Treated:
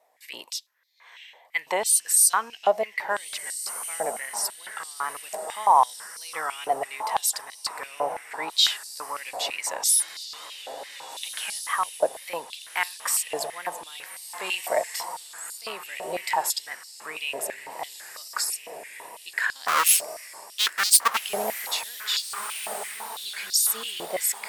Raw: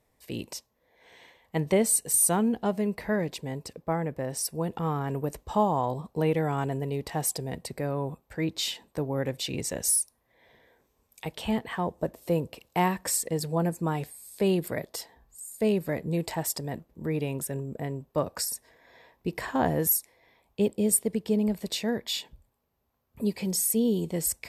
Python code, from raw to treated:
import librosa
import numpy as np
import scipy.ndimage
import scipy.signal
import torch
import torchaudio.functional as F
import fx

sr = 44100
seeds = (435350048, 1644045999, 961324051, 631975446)

y = fx.halfwave_hold(x, sr, at=(19.67, 21.22), fade=0.02)
y = fx.echo_diffused(y, sr, ms=1694, feedback_pct=48, wet_db=-11)
y = fx.wow_flutter(y, sr, seeds[0], rate_hz=2.1, depth_cents=70.0)
y = fx.filter_held_highpass(y, sr, hz=6.0, low_hz=690.0, high_hz=4600.0)
y = y * librosa.db_to_amplitude(3.0)